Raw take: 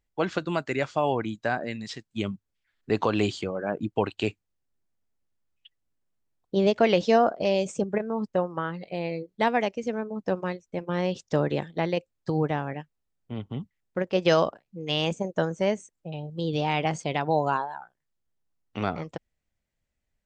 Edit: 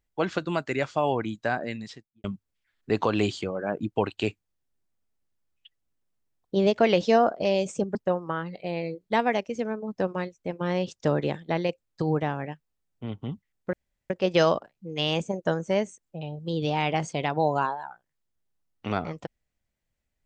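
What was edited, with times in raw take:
1.72–2.24 studio fade out
7.95–8.23 cut
14.01 insert room tone 0.37 s

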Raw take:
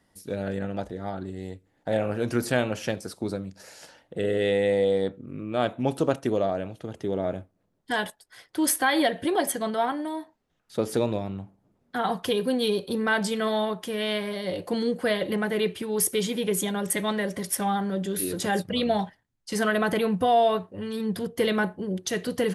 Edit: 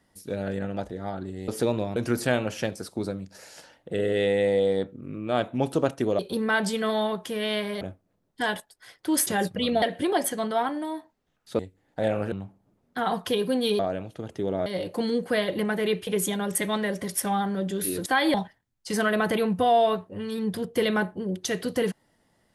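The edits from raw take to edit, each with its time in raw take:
1.48–2.21 swap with 10.82–11.3
6.44–7.31 swap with 12.77–14.39
8.77–9.05 swap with 18.41–18.96
15.8–16.42 cut

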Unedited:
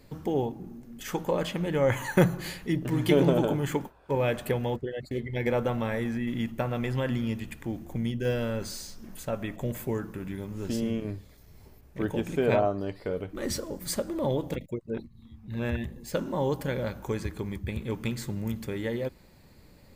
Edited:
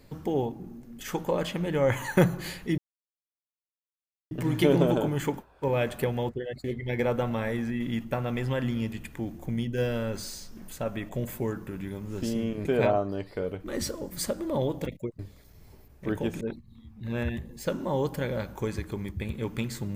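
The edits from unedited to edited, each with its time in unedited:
2.78 insert silence 1.53 s
11.12–12.34 move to 14.88

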